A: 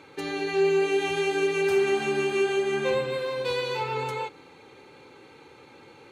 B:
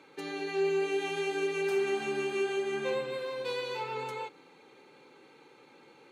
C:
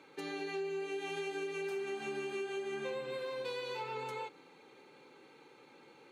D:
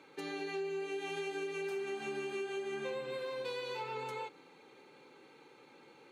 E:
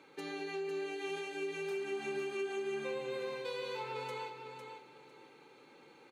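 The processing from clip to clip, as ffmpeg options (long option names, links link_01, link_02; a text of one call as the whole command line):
ffmpeg -i in.wav -af "highpass=frequency=150:width=0.5412,highpass=frequency=150:width=1.3066,volume=-6.5dB" out.wav
ffmpeg -i in.wav -af "acompressor=threshold=-34dB:ratio=6,volume=-2dB" out.wav
ffmpeg -i in.wav -af anull out.wav
ffmpeg -i in.wav -af "aecho=1:1:503|1006|1509:0.447|0.103|0.0236,volume=-1dB" out.wav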